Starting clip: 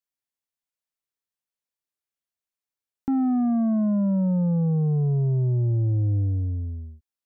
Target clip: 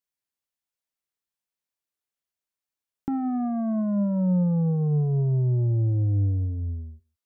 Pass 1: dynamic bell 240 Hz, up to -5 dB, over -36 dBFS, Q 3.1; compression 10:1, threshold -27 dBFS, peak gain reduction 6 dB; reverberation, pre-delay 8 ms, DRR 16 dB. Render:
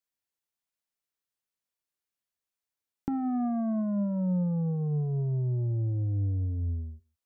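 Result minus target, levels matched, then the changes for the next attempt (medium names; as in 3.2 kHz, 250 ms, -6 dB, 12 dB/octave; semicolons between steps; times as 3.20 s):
compression: peak gain reduction +6 dB
remove: compression 10:1, threshold -27 dBFS, peak gain reduction 6 dB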